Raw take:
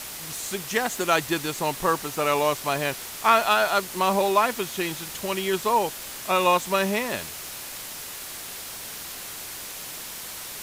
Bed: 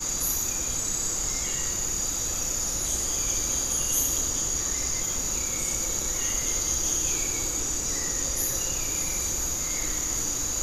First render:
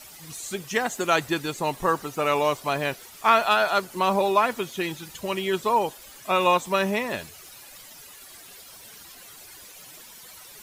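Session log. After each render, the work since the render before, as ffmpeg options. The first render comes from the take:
ffmpeg -i in.wav -af "afftdn=noise_reduction=13:noise_floor=-37" out.wav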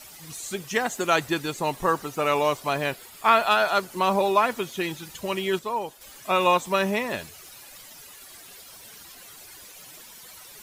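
ffmpeg -i in.wav -filter_complex "[0:a]asettb=1/sr,asplit=3[link_01][link_02][link_03];[link_01]atrim=end=2.914[link_04];[link_02]atrim=start=2.91:end=3.47,asetpts=PTS-STARTPTS,afade=type=in:duration=0.004:curve=qsin,afade=type=out:start_time=0.556:duration=0.004:curve=qsin,bandreject=frequency=5900:width=6.2[link_05];[link_03]atrim=start=3.466[link_06];[link_04][link_05]acrossfade=duration=0.004:curve1=hsin:curve2=qsin[link_07];[link_07][link_06]acrossfade=duration=0.004:curve1=qsin:curve2=hsin,asplit=3[link_08][link_09][link_10];[link_08]atrim=end=5.592[link_11];[link_09]atrim=start=5.588:end=6.012,asetpts=PTS-STARTPTS,volume=-6.5dB[link_12];[link_10]atrim=start=6.008[link_13];[link_11][link_12]acrossfade=duration=0.004:curve1=hsin:curve2=hsin[link_14];[link_14][link_13]acrossfade=duration=0.004:curve1=hsin:curve2=hsin" out.wav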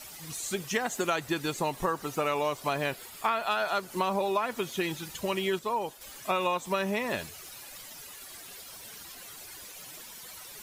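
ffmpeg -i in.wav -af "acompressor=threshold=-25dB:ratio=6" out.wav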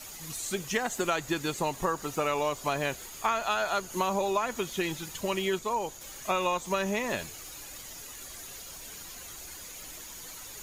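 ffmpeg -i in.wav -i bed.wav -filter_complex "[1:a]volume=-20.5dB[link_01];[0:a][link_01]amix=inputs=2:normalize=0" out.wav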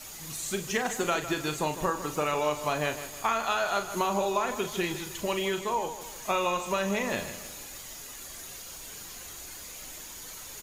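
ffmpeg -i in.wav -filter_complex "[0:a]asplit=2[link_01][link_02];[link_02]adelay=40,volume=-8.5dB[link_03];[link_01][link_03]amix=inputs=2:normalize=0,asplit=2[link_04][link_05];[link_05]aecho=0:1:155|310|465|620|775:0.251|0.113|0.0509|0.0229|0.0103[link_06];[link_04][link_06]amix=inputs=2:normalize=0" out.wav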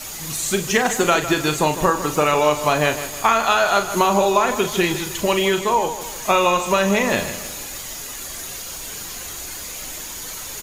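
ffmpeg -i in.wav -af "volume=11dB" out.wav

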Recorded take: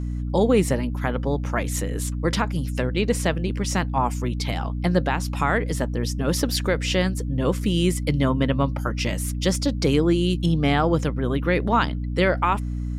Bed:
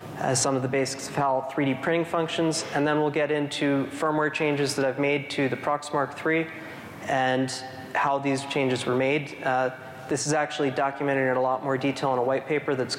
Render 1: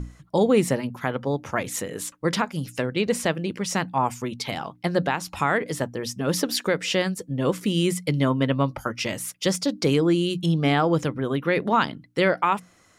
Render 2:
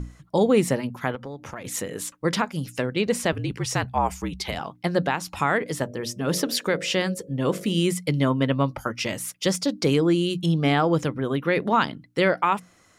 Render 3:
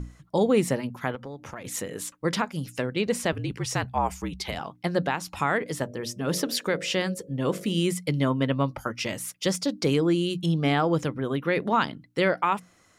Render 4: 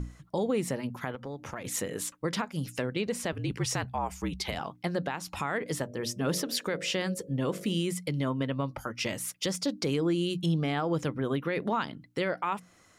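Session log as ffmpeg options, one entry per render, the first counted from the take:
ffmpeg -i in.wav -af "bandreject=frequency=60:width_type=h:width=6,bandreject=frequency=120:width_type=h:width=6,bandreject=frequency=180:width_type=h:width=6,bandreject=frequency=240:width_type=h:width=6,bandreject=frequency=300:width_type=h:width=6" out.wav
ffmpeg -i in.wav -filter_complex "[0:a]asettb=1/sr,asplit=3[link_01][link_02][link_03];[link_01]atrim=end=1.154[link_04];[link_02]atrim=start=1.15:end=1.65,asetpts=PTS-STARTPTS,afade=type=in:duration=0.004:curve=qsin,afade=type=out:start_time=0.496:duration=0.004:curve=qsin,acompressor=threshold=-33dB:ratio=4:attack=3.2:release=140:knee=1:detection=peak[link_05];[link_03]atrim=start=1.646[link_06];[link_04][link_05]acrossfade=duration=0.004:curve1=hsin:curve2=qsin[link_07];[link_07][link_06]acrossfade=duration=0.004:curve1=qsin:curve2=hsin,asettb=1/sr,asplit=3[link_08][link_09][link_10];[link_08]atrim=end=3.324[link_11];[link_09]atrim=start=3.32:end=4.59,asetpts=PTS-STARTPTS,afade=type=in:duration=0.004:curve=qsin,afade=type=out:start_time=1.266:duration=0.004:curve=qsin,afreqshift=-53[link_12];[link_10]atrim=start=4.586[link_13];[link_11][link_12]acrossfade=duration=0.004:curve1=hsin:curve2=qsin[link_14];[link_14][link_13]acrossfade=duration=0.004:curve1=qsin:curve2=hsin,asettb=1/sr,asplit=3[link_15][link_16][link_17];[link_15]atrim=end=5.834[link_18];[link_16]atrim=start=5.83:end=7.81,asetpts=PTS-STARTPTS,afade=type=in:duration=0.004:curve=qsin,afade=type=out:start_time=1.976:duration=0.004:curve=qsin,bandreject=frequency=49.98:width_type=h:width=4,bandreject=frequency=99.96:width_type=h:width=4,bandreject=frequency=149.94:width_type=h:width=4,bandreject=frequency=199.92:width_type=h:width=4,bandreject=frequency=249.9:width_type=h:width=4,bandreject=frequency=299.88:width_type=h:width=4,bandreject=frequency=349.86:width_type=h:width=4,bandreject=frequency=399.84:width_type=h:width=4,bandreject=frequency=449.82:width_type=h:width=4,bandreject=frequency=499.8:width_type=h:width=4,bandreject=frequency=549.78:width_type=h:width=4,bandreject=frequency=599.76:width_type=h:width=4,bandreject=frequency=649.74:width_type=h:width=4,bandreject=frequency=699.72:width_type=h:width=4[link_19];[link_17]atrim=start=7.806[link_20];[link_18][link_19]acrossfade=duration=0.004:curve1=hsin:curve2=qsin[link_21];[link_21][link_20]acrossfade=duration=0.004:curve1=qsin:curve2=hsin" out.wav
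ffmpeg -i in.wav -af "volume=-2.5dB" out.wav
ffmpeg -i in.wav -af "alimiter=limit=-20dB:level=0:latency=1:release=231" out.wav

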